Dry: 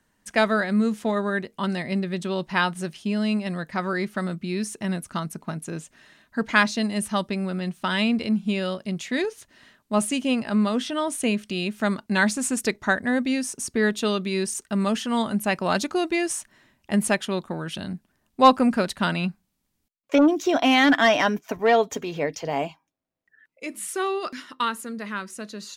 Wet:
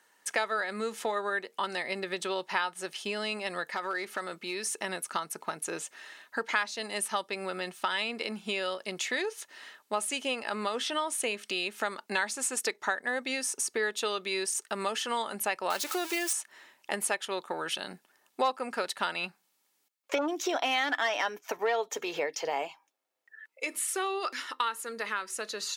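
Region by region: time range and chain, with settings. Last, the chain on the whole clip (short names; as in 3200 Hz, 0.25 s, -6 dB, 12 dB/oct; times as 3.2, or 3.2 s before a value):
3.68–4.76 bell 120 Hz -5.5 dB 1.2 oct + compressor 3:1, threshold -30 dBFS + hard clip -25.5 dBFS
15.7–16.33 switching spikes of -16.5 dBFS + high shelf 6000 Hz -9.5 dB
whole clip: HPF 550 Hz 12 dB/oct; comb 2.3 ms, depth 30%; compressor 3:1, threshold -36 dBFS; gain +5.5 dB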